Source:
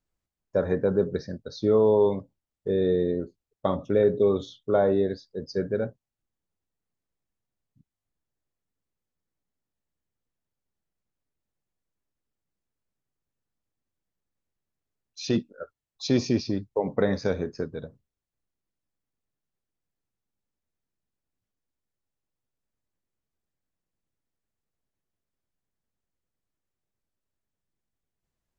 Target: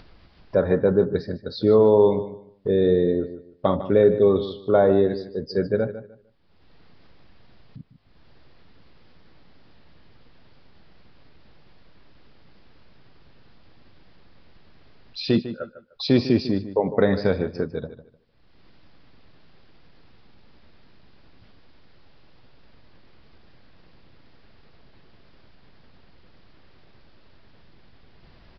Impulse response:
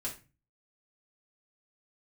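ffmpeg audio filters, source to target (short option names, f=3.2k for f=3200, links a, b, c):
-filter_complex "[0:a]acompressor=mode=upward:threshold=-31dB:ratio=2.5,asplit=2[a][b];[b]adelay=151,lowpass=f=3.8k:p=1,volume=-12.5dB,asplit=2[c][d];[d]adelay=151,lowpass=f=3.8k:p=1,volume=0.24,asplit=2[e][f];[f]adelay=151,lowpass=f=3.8k:p=1,volume=0.24[g];[c][e][g]amix=inputs=3:normalize=0[h];[a][h]amix=inputs=2:normalize=0,aresample=11025,aresample=44100,volume=4.5dB"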